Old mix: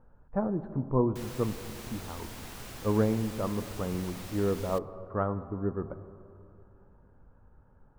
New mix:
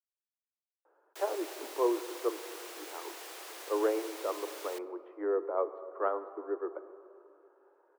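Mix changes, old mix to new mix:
speech: entry +0.85 s; master: add steep high-pass 320 Hz 96 dB/octave

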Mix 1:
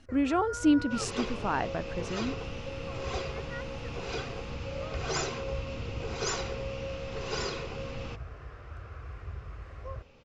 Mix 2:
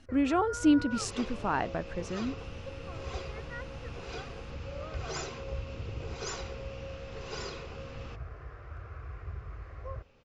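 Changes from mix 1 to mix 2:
first sound: add distance through air 90 m; second sound -6.0 dB

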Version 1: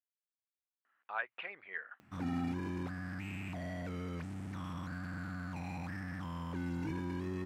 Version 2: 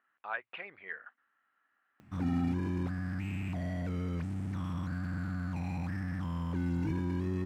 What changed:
speech: entry -0.85 s; master: add bass shelf 260 Hz +9 dB

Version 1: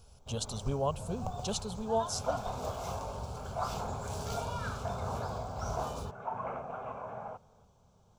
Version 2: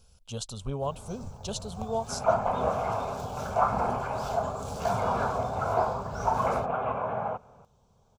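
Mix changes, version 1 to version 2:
first sound: entry +0.55 s; second sound +11.0 dB

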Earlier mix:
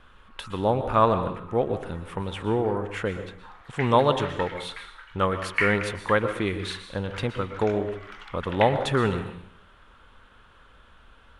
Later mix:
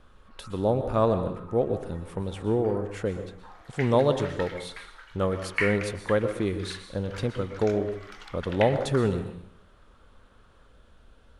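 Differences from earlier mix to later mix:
background +6.5 dB; master: add high-order bell 1.7 kHz -9 dB 2.3 oct

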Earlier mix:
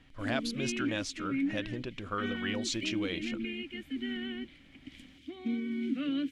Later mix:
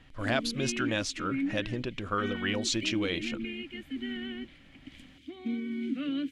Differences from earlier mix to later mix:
speech +4.5 dB; background: add band-stop 5.5 kHz, Q 24

